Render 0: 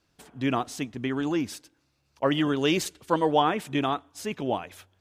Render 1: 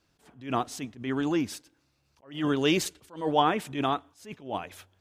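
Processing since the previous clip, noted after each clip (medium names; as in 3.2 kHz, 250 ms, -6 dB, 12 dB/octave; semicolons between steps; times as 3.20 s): attacks held to a fixed rise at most 150 dB/s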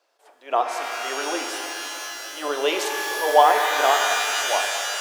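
high-pass 470 Hz 24 dB/octave; peaking EQ 620 Hz +10 dB 1.5 oct; pitch-shifted reverb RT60 3.3 s, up +12 st, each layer -2 dB, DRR 3.5 dB; trim +1 dB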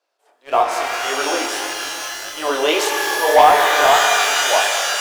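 waveshaping leveller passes 2; chorus 1.7 Hz, delay 19 ms, depth 7.9 ms; trim +2 dB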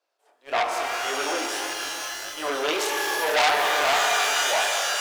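transformer saturation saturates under 3.3 kHz; trim -4.5 dB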